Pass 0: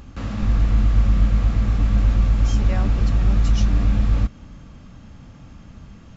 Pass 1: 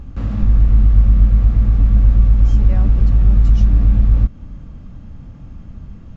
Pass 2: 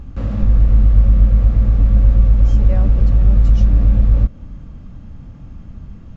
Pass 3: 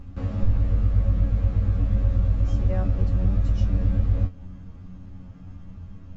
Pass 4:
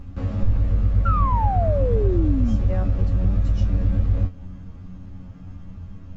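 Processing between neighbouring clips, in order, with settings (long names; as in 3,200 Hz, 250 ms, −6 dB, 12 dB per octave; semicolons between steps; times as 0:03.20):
spectral tilt −2.5 dB per octave; in parallel at −2 dB: downward compressor, threshold −13 dBFS, peak gain reduction 12 dB; on the sum: level −6.5 dB
dynamic equaliser 540 Hz, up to +8 dB, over −52 dBFS, Q 3.8
tuned comb filter 92 Hz, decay 0.18 s, harmonics all, mix 100%; level +1.5 dB
sound drawn into the spectrogram fall, 0:01.05–0:02.56, 210–1,400 Hz −26 dBFS; in parallel at −8 dB: soft clipping −23 dBFS, distortion −8 dB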